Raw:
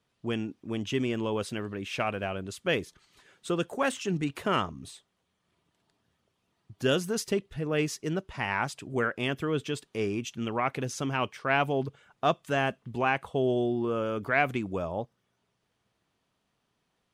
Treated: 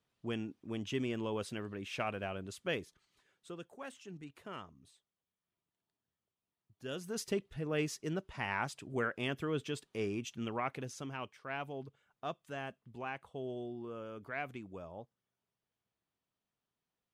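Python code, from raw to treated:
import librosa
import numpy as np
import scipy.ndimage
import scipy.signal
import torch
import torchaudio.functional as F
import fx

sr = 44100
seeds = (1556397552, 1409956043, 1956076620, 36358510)

y = fx.gain(x, sr, db=fx.line((2.56, -7.0), (3.69, -19.0), (6.82, -19.0), (7.23, -6.5), (10.46, -6.5), (11.38, -15.0)))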